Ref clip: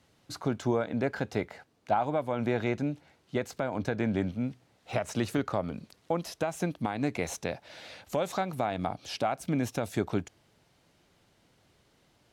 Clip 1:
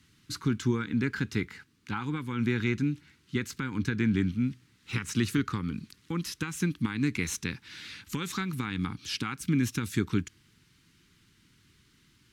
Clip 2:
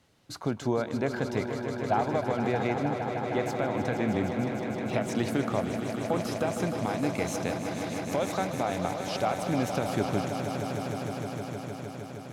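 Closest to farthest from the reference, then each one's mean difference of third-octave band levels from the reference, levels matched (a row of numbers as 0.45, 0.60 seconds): 1, 2; 5.5, 8.5 decibels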